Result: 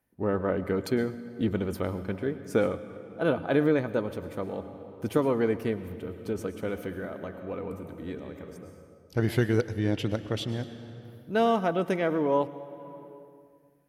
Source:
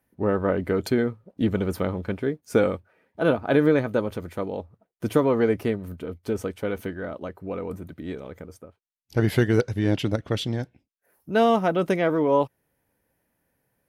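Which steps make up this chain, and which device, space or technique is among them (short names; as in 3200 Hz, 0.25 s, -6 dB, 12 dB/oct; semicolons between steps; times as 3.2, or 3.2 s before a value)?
compressed reverb return (on a send at -3 dB: reverb RT60 1.7 s, pre-delay 99 ms + compressor 4:1, threshold -32 dBFS, peak gain reduction 14.5 dB); on the sum: gain -4.5 dB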